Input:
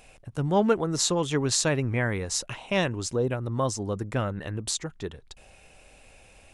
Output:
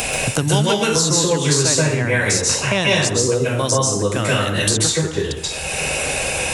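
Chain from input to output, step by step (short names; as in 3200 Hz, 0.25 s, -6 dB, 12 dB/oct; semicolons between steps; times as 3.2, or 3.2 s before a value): HPF 43 Hz; high shelf 3500 Hz +9.5 dB; plate-style reverb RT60 0.61 s, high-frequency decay 0.8×, pre-delay 0.12 s, DRR -6.5 dB; three-band squash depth 100%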